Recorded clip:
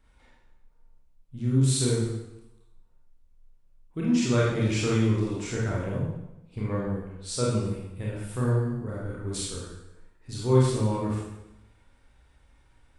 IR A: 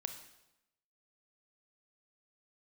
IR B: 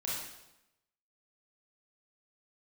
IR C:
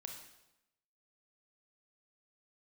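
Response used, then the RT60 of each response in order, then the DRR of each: B; 0.90 s, 0.90 s, 0.90 s; 7.0 dB, -6.0 dB, 2.5 dB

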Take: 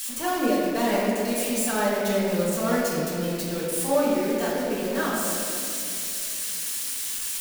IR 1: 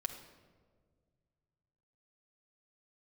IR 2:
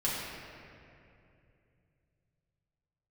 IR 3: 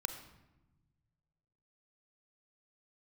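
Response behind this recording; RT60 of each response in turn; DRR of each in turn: 2; no single decay rate, 2.7 s, 1.1 s; 2.5 dB, -8.5 dB, 7.5 dB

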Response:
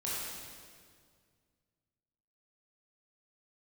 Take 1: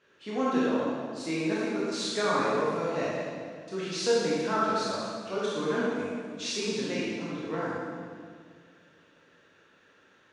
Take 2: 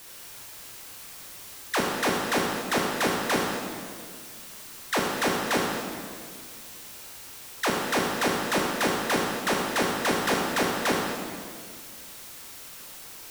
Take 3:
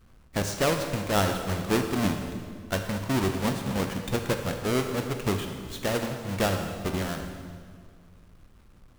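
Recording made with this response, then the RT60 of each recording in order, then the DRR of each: 1; 2.0 s, 2.0 s, 2.0 s; -8.0 dB, -2.0 dB, 4.5 dB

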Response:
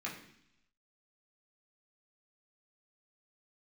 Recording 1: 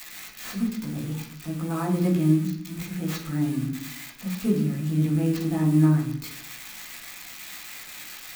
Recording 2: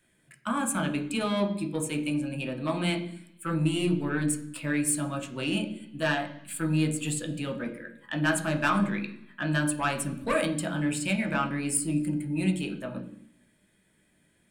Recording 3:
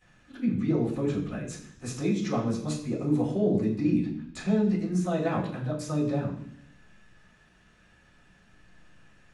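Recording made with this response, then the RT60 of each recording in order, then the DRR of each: 1; 0.70 s, 0.70 s, 0.70 s; -5.0 dB, 3.0 dB, -13.5 dB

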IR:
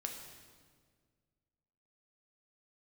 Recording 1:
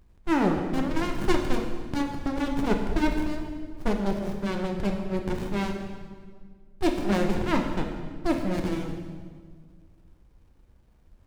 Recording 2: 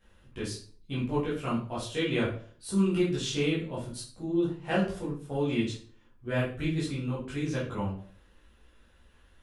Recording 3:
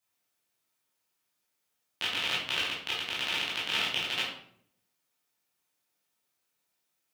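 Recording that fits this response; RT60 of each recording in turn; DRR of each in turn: 1; 1.8 s, 0.45 s, 0.65 s; 2.0 dB, -8.5 dB, -7.5 dB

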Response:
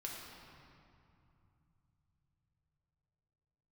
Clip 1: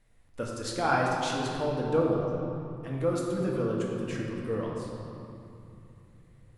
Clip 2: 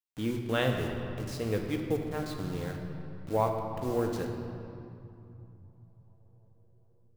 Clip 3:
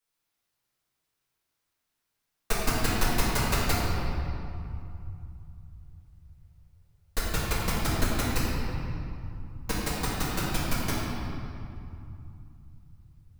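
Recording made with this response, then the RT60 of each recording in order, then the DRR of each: 1; 2.6 s, 2.9 s, 2.6 s; -3.0 dB, 2.0 dB, -9.0 dB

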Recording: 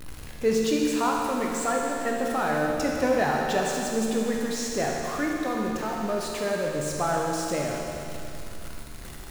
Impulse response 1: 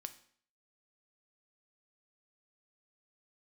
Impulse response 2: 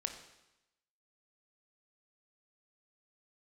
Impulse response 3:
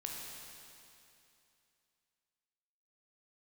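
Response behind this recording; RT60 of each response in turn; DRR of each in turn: 3; 0.55 s, 0.90 s, 2.7 s; 9.0 dB, 5.5 dB, -1.5 dB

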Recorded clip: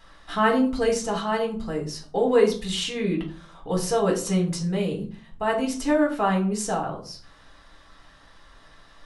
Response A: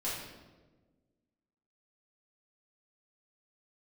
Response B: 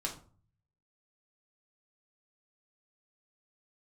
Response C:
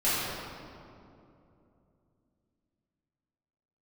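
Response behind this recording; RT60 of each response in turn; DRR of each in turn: B; 1.3 s, 0.45 s, 2.8 s; -9.5 dB, -1.0 dB, -12.5 dB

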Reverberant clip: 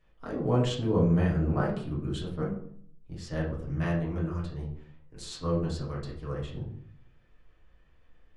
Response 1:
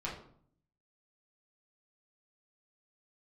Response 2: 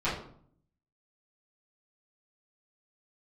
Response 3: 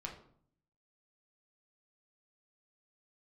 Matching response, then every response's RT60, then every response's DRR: 1; 0.60 s, 0.60 s, 0.60 s; -6.0 dB, -13.0 dB, -0.5 dB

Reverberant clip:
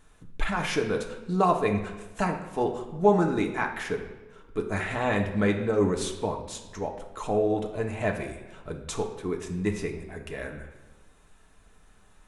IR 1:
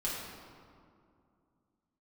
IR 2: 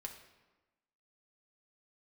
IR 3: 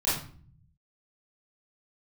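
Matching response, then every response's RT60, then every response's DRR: 2; 2.4 s, 1.2 s, 0.45 s; -7.0 dB, 1.5 dB, -11.0 dB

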